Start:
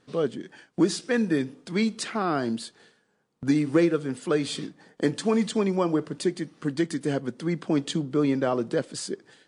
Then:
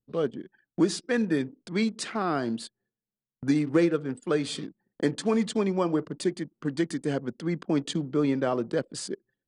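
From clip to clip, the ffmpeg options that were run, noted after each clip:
ffmpeg -i in.wav -af "anlmdn=0.398,aeval=exprs='0.335*(cos(1*acos(clip(val(0)/0.335,-1,1)))-cos(1*PI/2))+0.00237*(cos(7*acos(clip(val(0)/0.335,-1,1)))-cos(7*PI/2))':channel_layout=same,volume=-1.5dB" out.wav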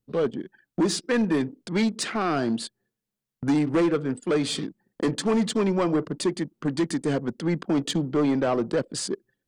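ffmpeg -i in.wav -af "asoftclip=type=tanh:threshold=-23dB,volume=6dB" out.wav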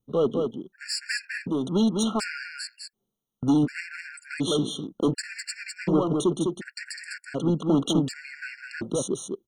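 ffmpeg -i in.wav -filter_complex "[0:a]asplit=2[link_01][link_02];[link_02]aecho=0:1:204:0.596[link_03];[link_01][link_03]amix=inputs=2:normalize=0,afftfilt=real='re*gt(sin(2*PI*0.68*pts/sr)*(1-2*mod(floor(b*sr/1024/1400),2)),0)':imag='im*gt(sin(2*PI*0.68*pts/sr)*(1-2*mod(floor(b*sr/1024/1400),2)),0)':win_size=1024:overlap=0.75,volume=1.5dB" out.wav

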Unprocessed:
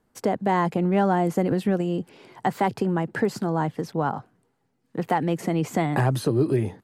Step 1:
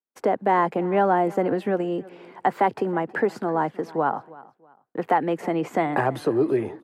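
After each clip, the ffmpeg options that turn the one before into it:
ffmpeg -i in.wav -filter_complex "[0:a]acrossover=split=270 2600:gain=0.158 1 0.224[link_01][link_02][link_03];[link_01][link_02][link_03]amix=inputs=3:normalize=0,agate=range=-33dB:threshold=-54dB:ratio=3:detection=peak,aecho=1:1:321|642:0.0891|0.0258,volume=3.5dB" out.wav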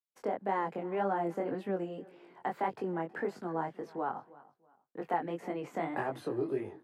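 ffmpeg -i in.wav -af "flanger=delay=20:depth=4.7:speed=1.8,volume=-9dB" out.wav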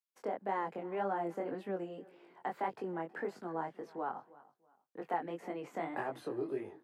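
ffmpeg -i in.wav -af "lowshelf=frequency=110:gain=-12,volume=-3dB" out.wav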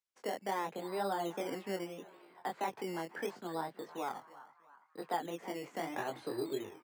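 ffmpeg -i in.wav -filter_complex "[0:a]lowpass=8400,acrossover=split=660|4200[link_01][link_02][link_03];[link_01]acrusher=samples=14:mix=1:aa=0.000001:lfo=1:lforange=8.4:lforate=0.75[link_04];[link_02]asplit=6[link_05][link_06][link_07][link_08][link_09][link_10];[link_06]adelay=331,afreqshift=73,volume=-14.5dB[link_11];[link_07]adelay=662,afreqshift=146,volume=-20.5dB[link_12];[link_08]adelay=993,afreqshift=219,volume=-26.5dB[link_13];[link_09]adelay=1324,afreqshift=292,volume=-32.6dB[link_14];[link_10]adelay=1655,afreqshift=365,volume=-38.6dB[link_15];[link_05][link_11][link_12][link_13][link_14][link_15]amix=inputs=6:normalize=0[link_16];[link_04][link_16][link_03]amix=inputs=3:normalize=0" out.wav

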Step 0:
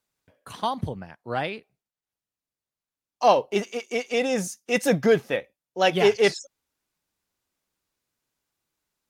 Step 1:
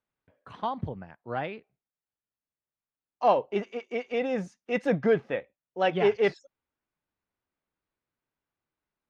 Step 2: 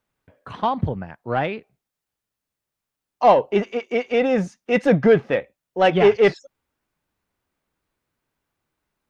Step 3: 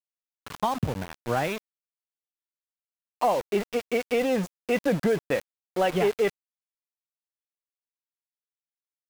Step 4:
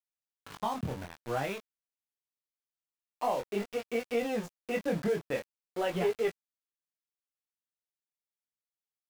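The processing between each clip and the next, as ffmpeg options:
ffmpeg -i in.wav -af "lowpass=2300,volume=-4dB" out.wav
ffmpeg -i in.wav -filter_complex "[0:a]asplit=2[link_01][link_02];[link_02]asoftclip=type=tanh:threshold=-24dB,volume=-5dB[link_03];[link_01][link_03]amix=inputs=2:normalize=0,lowshelf=frequency=130:gain=3.5,volume=6dB" out.wav
ffmpeg -i in.wav -af "acompressor=threshold=-22dB:ratio=4,aeval=exprs='val(0)*gte(abs(val(0)),0.0282)':channel_layout=same" out.wav
ffmpeg -i in.wav -af "flanger=delay=17:depth=7.1:speed=0.49,volume=-4dB" out.wav

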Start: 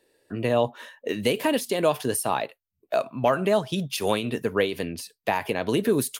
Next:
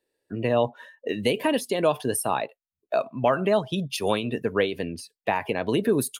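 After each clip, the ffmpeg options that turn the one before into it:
ffmpeg -i in.wav -af "afftdn=noise_reduction=13:noise_floor=-39" out.wav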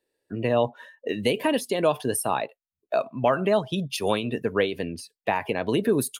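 ffmpeg -i in.wav -af anull out.wav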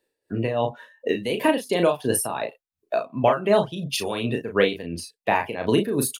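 ffmpeg -i in.wav -filter_complex "[0:a]tremolo=f=2.8:d=0.7,asplit=2[link_01][link_02];[link_02]adelay=35,volume=-5.5dB[link_03];[link_01][link_03]amix=inputs=2:normalize=0,volume=4dB" out.wav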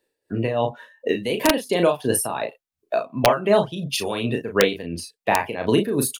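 ffmpeg -i in.wav -af "aeval=exprs='(mod(2.11*val(0)+1,2)-1)/2.11':channel_layout=same,volume=1.5dB" out.wav

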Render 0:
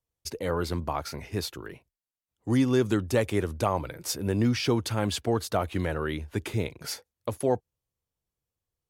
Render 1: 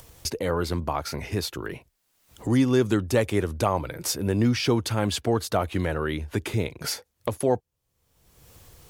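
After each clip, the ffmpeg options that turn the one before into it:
ffmpeg -i in.wav -af "acompressor=mode=upward:threshold=-26dB:ratio=2.5,volume=2.5dB" out.wav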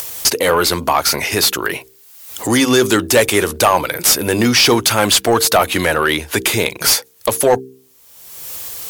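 ffmpeg -i in.wav -filter_complex "[0:a]aemphasis=mode=production:type=75fm,bandreject=frequency=65.08:width_type=h:width=4,bandreject=frequency=130.16:width_type=h:width=4,bandreject=frequency=195.24:width_type=h:width=4,bandreject=frequency=260.32:width_type=h:width=4,bandreject=frequency=325.4:width_type=h:width=4,bandreject=frequency=390.48:width_type=h:width=4,bandreject=frequency=455.56:width_type=h:width=4,asplit=2[link_01][link_02];[link_02]highpass=frequency=720:poles=1,volume=21dB,asoftclip=type=tanh:threshold=-2.5dB[link_03];[link_01][link_03]amix=inputs=2:normalize=0,lowpass=frequency=4700:poles=1,volume=-6dB,volume=3dB" out.wav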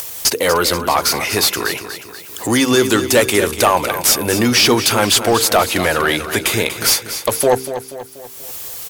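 ffmpeg -i in.wav -af "aecho=1:1:241|482|723|964|1205:0.282|0.141|0.0705|0.0352|0.0176,volume=-1dB" out.wav

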